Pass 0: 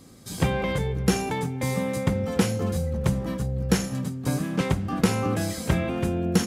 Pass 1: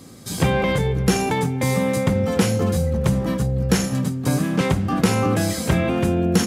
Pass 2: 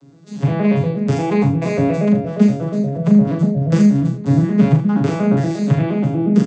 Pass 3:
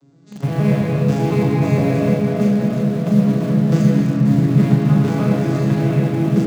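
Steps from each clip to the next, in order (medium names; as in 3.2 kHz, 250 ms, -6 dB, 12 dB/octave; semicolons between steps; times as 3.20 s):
high-pass 62 Hz; in parallel at +2 dB: peak limiter -18.5 dBFS, peak gain reduction 11.5 dB
vocoder on a broken chord minor triad, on C#3, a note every 118 ms; level rider; on a send: early reflections 39 ms -5 dB, 78 ms -10.5 dB; on the sum: trim -1.5 dB
in parallel at -10 dB: bit crusher 4-bit; on the sum: reverberation RT60 2.1 s, pre-delay 103 ms, DRR -1.5 dB; trim -6.5 dB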